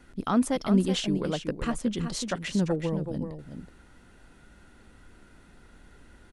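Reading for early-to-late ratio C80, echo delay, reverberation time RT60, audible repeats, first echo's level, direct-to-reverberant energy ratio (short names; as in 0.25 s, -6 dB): none, 0.375 s, none, 1, -8.5 dB, none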